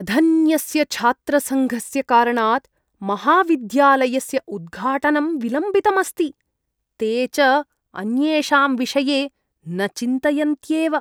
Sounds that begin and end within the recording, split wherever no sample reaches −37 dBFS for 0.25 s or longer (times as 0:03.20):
0:03.02–0:06.31
0:07.00–0:07.63
0:07.94–0:09.28